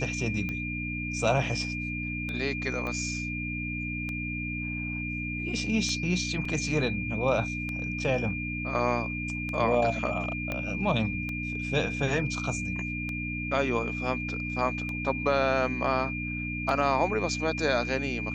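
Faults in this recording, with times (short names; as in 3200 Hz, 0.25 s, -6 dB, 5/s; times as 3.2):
hum 60 Hz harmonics 5 -35 dBFS
tick 33 1/3 rpm -21 dBFS
tone 2400 Hz -34 dBFS
2.87 pop -22 dBFS
6.45 gap 3.9 ms
10.52 pop -17 dBFS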